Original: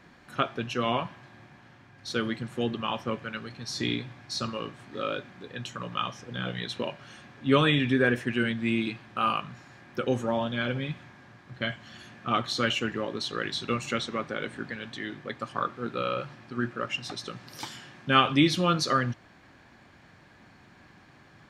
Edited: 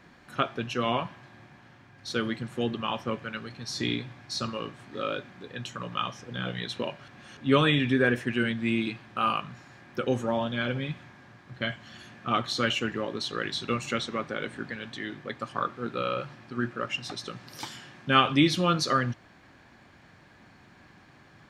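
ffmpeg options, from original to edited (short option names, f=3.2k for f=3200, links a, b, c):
-filter_complex "[0:a]asplit=3[a][b][c];[a]atrim=end=7.082[d];[b]atrim=start=7.078:end=7.372,asetpts=PTS-STARTPTS,areverse[e];[c]atrim=start=7.368[f];[d][e]acrossfade=d=0.004:c1=hsin:c2=hsin[g];[g][f]acrossfade=d=0.004:c1=hsin:c2=hsin"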